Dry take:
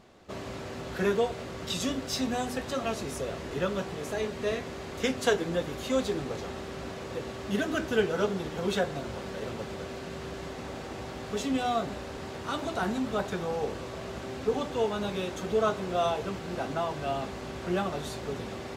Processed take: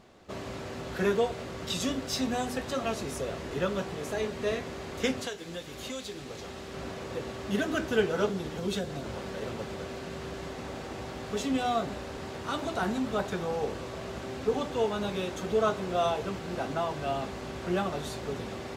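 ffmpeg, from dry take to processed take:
ffmpeg -i in.wav -filter_complex "[0:a]asettb=1/sr,asplit=3[link_01][link_02][link_03];[link_01]atrim=end=5.204[link_04];[link_02]atrim=start=5.2:end=6.74,asetpts=PTS-STARTPTS,afade=type=in:duration=0.004:curve=qsin,afade=type=out:start_time=1.536:duration=0.004:curve=qsin,acrossover=split=2200|5200[link_05][link_06][link_07];[link_05]acompressor=threshold=-39dB:ratio=4[link_08];[link_06]acompressor=threshold=-41dB:ratio=4[link_09];[link_07]acompressor=threshold=-46dB:ratio=4[link_10];[link_08][link_09][link_10]amix=inputs=3:normalize=0[link_11];[link_03]atrim=start=6.736[link_12];[link_04][link_11]acrossfade=duration=0.004:curve1=hsin:curve2=qsin[link_13];[link_13][link_12]acrossfade=duration=0.004:curve1=qsin:curve2=hsin,asettb=1/sr,asplit=3[link_14][link_15][link_16];[link_14]atrim=end=8.294[link_17];[link_15]atrim=start=8.29:end=9.06,asetpts=PTS-STARTPTS,afade=type=in:duration=0.004:curve=qsin,afade=type=out:start_time=0.766:duration=0.004:curve=qsin,acrossover=split=400|3000[link_18][link_19][link_20];[link_19]acompressor=threshold=-39dB:ratio=6:attack=3.2:release=140:knee=2.83:detection=peak[link_21];[link_18][link_21][link_20]amix=inputs=3:normalize=0[link_22];[link_16]atrim=start=9.056[link_23];[link_17][link_22]acrossfade=duration=0.004:curve1=hsin:curve2=qsin[link_24];[link_24][link_23]acrossfade=duration=0.004:curve1=qsin:curve2=hsin" out.wav

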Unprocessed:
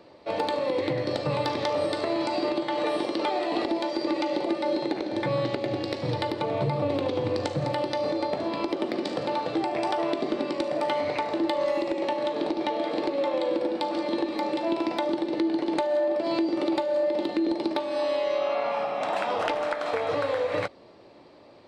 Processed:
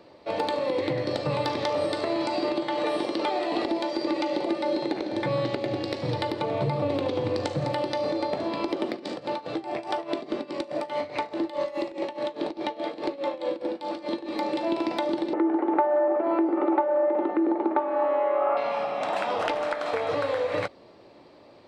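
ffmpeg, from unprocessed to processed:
ffmpeg -i in.wav -filter_complex "[0:a]asettb=1/sr,asplit=3[link_01][link_02][link_03];[link_01]atrim=end=8.904[link_04];[link_02]atrim=start=8.9:end=14.33,asetpts=PTS-STARTPTS,afade=type=in:duration=0.004:curve=qsin,afade=type=out:start_time=5.426:duration=0.004:curve=qsin,tremolo=f=4.8:d=0.84[link_05];[link_03]atrim=start=14.326[link_06];[link_04][link_05]acrossfade=duration=0.004:curve1=hsin:curve2=qsin[link_07];[link_07][link_06]acrossfade=duration=0.004:curve1=qsin:curve2=hsin,asettb=1/sr,asplit=3[link_08][link_09][link_10];[link_08]atrim=end=15.334[link_11];[link_09]atrim=start=15.33:end=18.57,asetpts=PTS-STARTPTS,afade=type=in:duration=0.004:curve=qsin,afade=type=out:start_time=3.236:duration=0.004:curve=qsin,highpass=frequency=230:width=0.5412,highpass=frequency=230:width=1.3066,equalizer=frequency=380:width_type=q:width=4:gain=4,equalizer=frequency=830:width_type=q:width=4:gain=8,equalizer=frequency=1300:width_type=q:width=4:gain=9,lowpass=frequency=2000:width=0.5412,lowpass=frequency=2000:width=1.3066[link_12];[link_10]atrim=start=18.566[link_13];[link_11][link_12]acrossfade=duration=0.004:curve1=hsin:curve2=qsin[link_14];[link_14][link_13]acrossfade=duration=0.004:curve1=qsin:curve2=hsin" out.wav

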